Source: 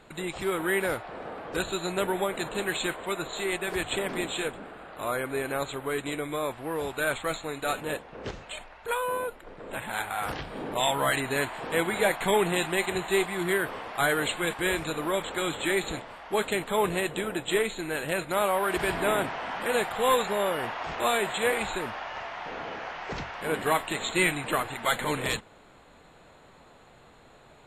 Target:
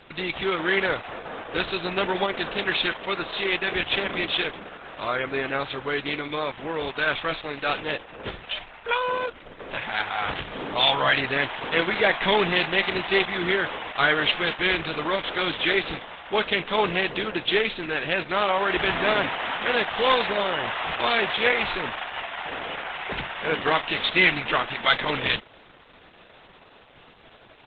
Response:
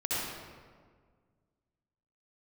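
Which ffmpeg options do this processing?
-af "crystalizer=i=5.5:c=0,aresample=8000,aresample=44100,volume=2dB" -ar 48000 -c:a libopus -b:a 10k

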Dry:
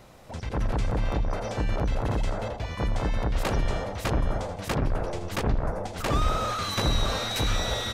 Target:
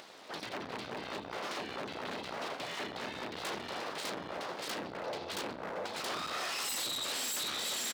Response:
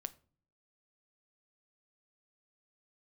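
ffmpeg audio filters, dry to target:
-filter_complex "[0:a]acompressor=threshold=-33dB:ratio=2.5,highshelf=frequency=6000:width_type=q:width=3:gain=-13,asplit=2[link_01][link_02];[link_02]adelay=33,volume=-10dB[link_03];[link_01][link_03]amix=inputs=2:normalize=0,asplit=2[link_04][link_05];[1:a]atrim=start_sample=2205,asetrate=66150,aresample=44100[link_06];[link_05][link_06]afir=irnorm=-1:irlink=0,volume=10.5dB[link_07];[link_04][link_07]amix=inputs=2:normalize=0,volume=19.5dB,asoftclip=hard,volume=-19.5dB,acompressor=mode=upward:threshold=-39dB:ratio=2.5,aeval=exprs='abs(val(0))':channel_layout=same,highpass=290,volume=-6.5dB"

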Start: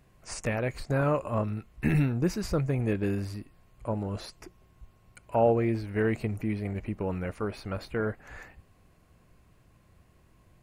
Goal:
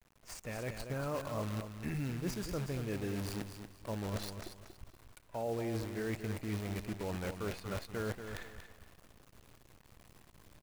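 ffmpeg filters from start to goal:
ffmpeg -i in.wav -af "adynamicequalizer=threshold=0.00708:dfrequency=160:dqfactor=1.6:tfrequency=160:tqfactor=1.6:attack=5:release=100:ratio=0.375:range=1.5:mode=cutabove:tftype=bell,acrusher=bits=7:dc=4:mix=0:aa=0.000001,areverse,acompressor=threshold=-37dB:ratio=5,areverse,aecho=1:1:235|470|705:0.376|0.105|0.0295,dynaudnorm=framelen=410:gausssize=3:maxgain=6dB,volume=-5dB" out.wav

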